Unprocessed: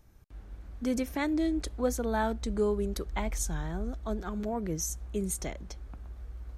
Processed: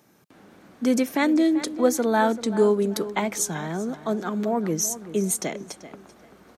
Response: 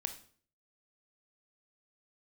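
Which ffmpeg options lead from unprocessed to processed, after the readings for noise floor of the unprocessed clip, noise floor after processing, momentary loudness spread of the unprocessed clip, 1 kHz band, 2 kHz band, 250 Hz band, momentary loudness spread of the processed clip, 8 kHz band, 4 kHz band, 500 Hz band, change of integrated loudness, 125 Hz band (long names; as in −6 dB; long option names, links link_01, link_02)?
−50 dBFS, −55 dBFS, 16 LU, +9.0 dB, +9.0 dB, +9.0 dB, 9 LU, +9.0 dB, +9.0 dB, +9.0 dB, +8.5 dB, +2.5 dB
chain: -filter_complex "[0:a]highpass=frequency=170:width=0.5412,highpass=frequency=170:width=1.3066,asplit=2[link_01][link_02];[link_02]adelay=387,lowpass=frequency=4000:poles=1,volume=-14dB,asplit=2[link_03][link_04];[link_04]adelay=387,lowpass=frequency=4000:poles=1,volume=0.29,asplit=2[link_05][link_06];[link_06]adelay=387,lowpass=frequency=4000:poles=1,volume=0.29[link_07];[link_01][link_03][link_05][link_07]amix=inputs=4:normalize=0,volume=9dB"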